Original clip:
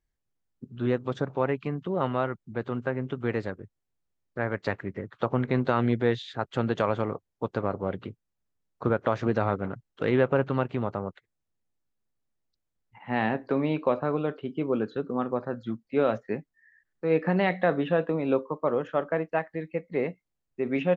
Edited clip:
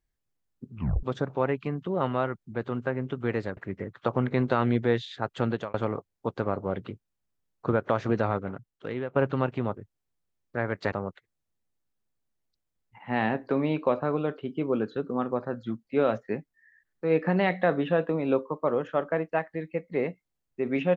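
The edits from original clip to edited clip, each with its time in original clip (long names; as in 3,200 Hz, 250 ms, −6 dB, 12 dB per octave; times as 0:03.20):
0:00.74: tape stop 0.29 s
0:03.57–0:04.74: move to 0:10.92
0:06.66–0:06.91: fade out
0:09.32–0:10.33: fade out linear, to −14.5 dB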